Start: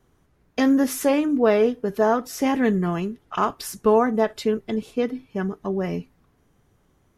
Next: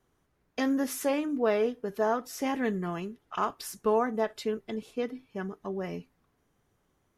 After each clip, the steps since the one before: bass shelf 280 Hz -6 dB; trim -6.5 dB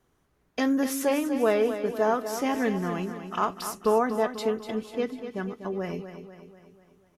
feedback delay 245 ms, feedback 52%, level -10 dB; trim +3 dB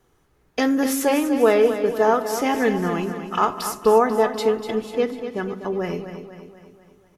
reverberation RT60 1.2 s, pre-delay 4 ms, DRR 13 dB; trim +6 dB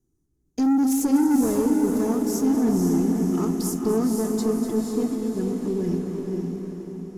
FFT filter 210 Hz 0 dB, 320 Hz +3 dB, 490 Hz -17 dB, 2.8 kHz -25 dB, 6.7 kHz -2 dB, 11 kHz -5 dB; waveshaping leveller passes 2; on a send: echo that smears into a reverb 507 ms, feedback 48%, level -3.5 dB; on the sum: trim -3.5 dB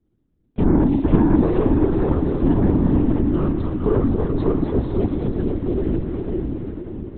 LPC vocoder at 8 kHz whisper; trim +4 dB

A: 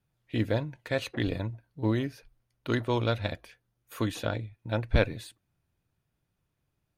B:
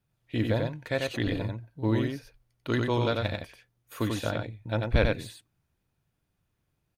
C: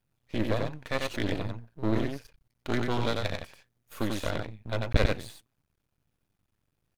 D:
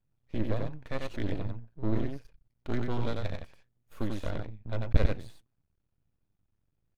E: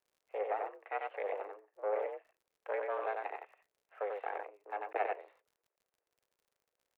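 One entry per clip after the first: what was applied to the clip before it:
delay 92 ms -3.5 dB
half-wave rectifier; trim +2.5 dB
tilt EQ -2 dB/octave; trim -7 dB
mistuned SSB +200 Hz 260–2300 Hz; crackle 57 per s -61 dBFS

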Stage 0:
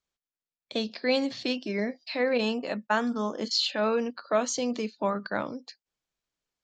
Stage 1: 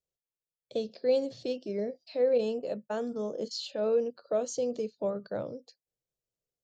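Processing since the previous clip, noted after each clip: graphic EQ 125/250/500/1000/2000/4000 Hz +9/-6/+11/-10/-12/-4 dB; trim -5.5 dB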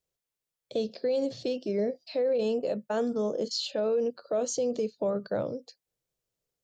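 peak limiter -26.5 dBFS, peak gain reduction 10 dB; trim +5.5 dB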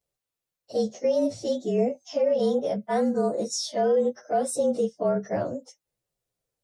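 frequency axis rescaled in octaves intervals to 109%; trim +6 dB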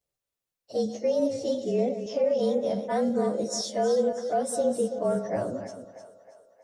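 chunks repeated in reverse 172 ms, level -9.5 dB; two-band feedback delay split 490 Hz, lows 129 ms, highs 316 ms, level -13.5 dB; trim -2 dB

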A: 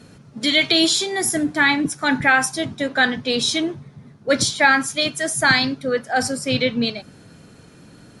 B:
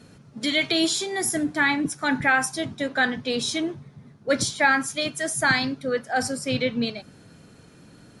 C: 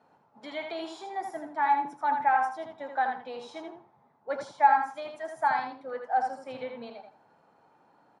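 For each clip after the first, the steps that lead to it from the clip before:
dynamic bell 3.8 kHz, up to -4 dB, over -28 dBFS, Q 1.2; trim -4 dB
band-pass filter 860 Hz, Q 5.7; on a send: feedback delay 81 ms, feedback 19%, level -6 dB; on the sum: trim +5 dB

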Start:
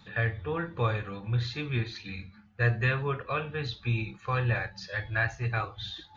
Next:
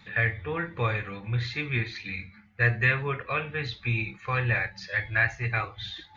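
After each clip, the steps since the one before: peaking EQ 2.1 kHz +13.5 dB 0.44 oct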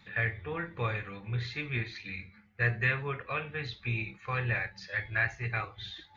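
AM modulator 290 Hz, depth 15%; trim -4 dB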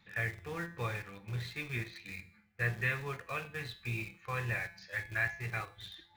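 in parallel at -9 dB: bit crusher 6-bit; on the sum: feedback comb 170 Hz, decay 0.6 s, harmonics all, mix 60%

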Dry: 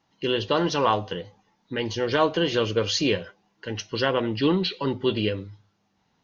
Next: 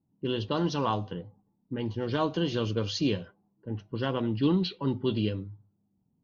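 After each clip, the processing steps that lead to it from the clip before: level-controlled noise filter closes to 400 Hz, open at -18 dBFS; ten-band graphic EQ 125 Hz +5 dB, 250 Hz +4 dB, 500 Hz -5 dB, 2 kHz -9 dB; trim -4.5 dB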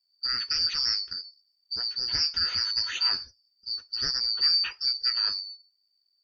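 four frequency bands reordered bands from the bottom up 2341; trim +1 dB

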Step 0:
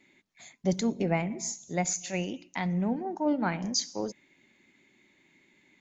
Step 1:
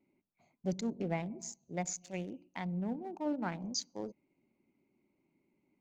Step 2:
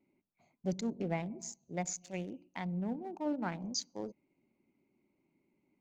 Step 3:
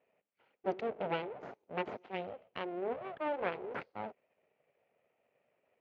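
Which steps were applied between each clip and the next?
local Wiener filter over 25 samples; trim -7.5 dB
no audible change
full-wave rectifier; cabinet simulation 280–2800 Hz, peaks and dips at 320 Hz -5 dB, 1.1 kHz -6 dB, 1.7 kHz -4 dB; trim +7 dB

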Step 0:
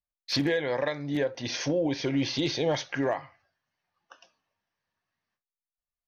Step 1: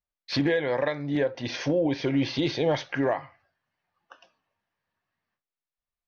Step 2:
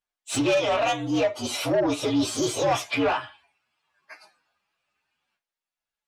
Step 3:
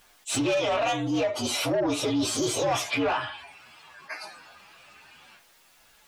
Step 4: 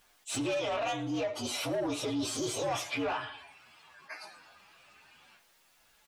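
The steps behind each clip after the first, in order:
Bessel low-pass 3.3 kHz, order 2; trim +2.5 dB
frequency axis rescaled in octaves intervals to 121%; overdrive pedal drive 16 dB, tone 5.3 kHz, clips at -15.5 dBFS; trim +1.5 dB
level flattener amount 50%; trim -4 dB
feedback delay 111 ms, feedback 48%, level -21 dB; trim -7 dB

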